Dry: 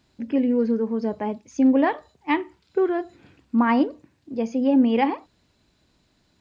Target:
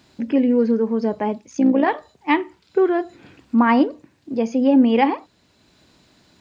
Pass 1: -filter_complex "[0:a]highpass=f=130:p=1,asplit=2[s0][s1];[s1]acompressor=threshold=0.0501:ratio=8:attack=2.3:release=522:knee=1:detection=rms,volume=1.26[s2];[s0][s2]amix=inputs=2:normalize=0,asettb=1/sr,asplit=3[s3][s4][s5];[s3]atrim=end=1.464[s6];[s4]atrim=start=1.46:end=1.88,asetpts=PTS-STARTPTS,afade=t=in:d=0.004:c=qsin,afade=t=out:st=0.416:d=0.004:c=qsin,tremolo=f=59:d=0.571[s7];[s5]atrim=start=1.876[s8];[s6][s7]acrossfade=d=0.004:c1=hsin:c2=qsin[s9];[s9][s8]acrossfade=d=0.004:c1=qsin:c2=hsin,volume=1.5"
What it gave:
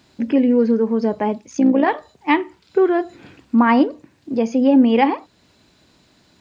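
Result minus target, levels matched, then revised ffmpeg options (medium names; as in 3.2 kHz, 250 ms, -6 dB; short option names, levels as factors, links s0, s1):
compression: peak gain reduction -8.5 dB
-filter_complex "[0:a]highpass=f=130:p=1,asplit=2[s0][s1];[s1]acompressor=threshold=0.0168:ratio=8:attack=2.3:release=522:knee=1:detection=rms,volume=1.26[s2];[s0][s2]amix=inputs=2:normalize=0,asettb=1/sr,asplit=3[s3][s4][s5];[s3]atrim=end=1.464[s6];[s4]atrim=start=1.46:end=1.88,asetpts=PTS-STARTPTS,afade=t=in:d=0.004:c=qsin,afade=t=out:st=0.416:d=0.004:c=qsin,tremolo=f=59:d=0.571[s7];[s5]atrim=start=1.876[s8];[s6][s7]acrossfade=d=0.004:c1=hsin:c2=qsin[s9];[s9][s8]acrossfade=d=0.004:c1=qsin:c2=hsin,volume=1.5"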